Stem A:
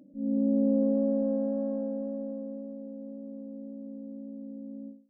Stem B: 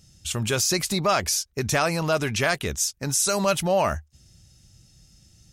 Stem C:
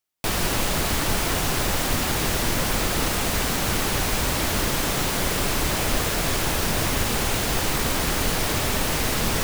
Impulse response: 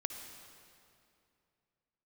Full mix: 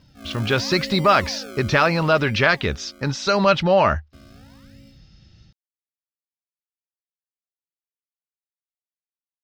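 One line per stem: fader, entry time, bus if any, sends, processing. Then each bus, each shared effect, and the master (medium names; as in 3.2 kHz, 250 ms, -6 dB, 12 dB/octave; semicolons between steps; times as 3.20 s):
-2.5 dB, 0.00 s, muted 3.63–4.13 s, no send, tilt EQ +3.5 dB/octave; decimation with a swept rate 33×, swing 100% 0.77 Hz
+1.0 dB, 0.00 s, no send, steep low-pass 4.7 kHz 36 dB/octave; band-stop 710 Hz, Q 13; level rider gain up to 4.5 dB
mute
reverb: none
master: peaking EQ 1.4 kHz +3 dB 0.77 oct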